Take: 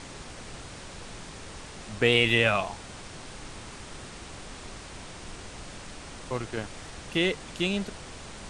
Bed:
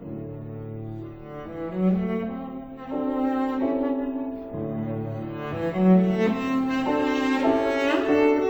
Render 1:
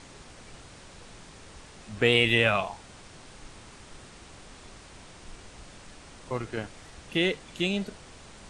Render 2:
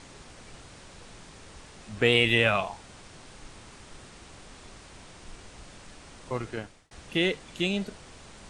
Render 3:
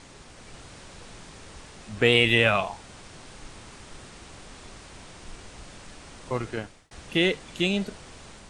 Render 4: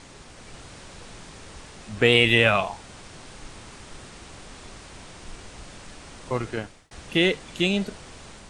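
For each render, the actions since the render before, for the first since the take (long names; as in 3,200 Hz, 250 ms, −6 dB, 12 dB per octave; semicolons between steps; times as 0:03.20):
noise reduction from a noise print 6 dB
0:06.49–0:06.91: fade out linear
automatic gain control gain up to 3 dB
level +2 dB; brickwall limiter −3 dBFS, peak gain reduction 1 dB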